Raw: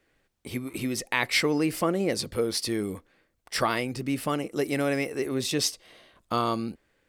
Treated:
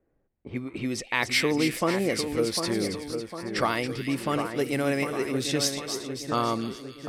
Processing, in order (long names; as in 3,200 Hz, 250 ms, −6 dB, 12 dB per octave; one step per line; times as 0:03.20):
low-pass that shuts in the quiet parts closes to 690 Hz, open at −24 dBFS
echo with a time of its own for lows and highs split 1,900 Hz, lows 752 ms, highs 276 ms, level −7 dB